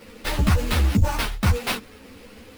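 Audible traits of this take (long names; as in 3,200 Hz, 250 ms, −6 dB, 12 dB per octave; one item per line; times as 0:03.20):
aliases and images of a low sample rate 7,100 Hz, jitter 20%
a shimmering, thickened sound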